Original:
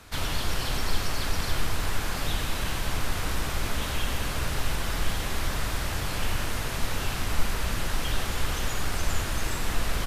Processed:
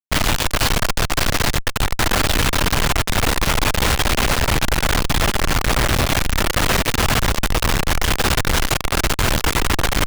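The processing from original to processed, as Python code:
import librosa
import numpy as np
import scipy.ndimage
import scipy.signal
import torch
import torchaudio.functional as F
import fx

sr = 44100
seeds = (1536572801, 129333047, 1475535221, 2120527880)

y = fx.lowpass(x, sr, hz=10000.0, slope=24, at=(5.17, 5.96))
y = fx.schmitt(y, sr, flips_db=-38.5)
y = y * 10.0 ** (9.0 / 20.0)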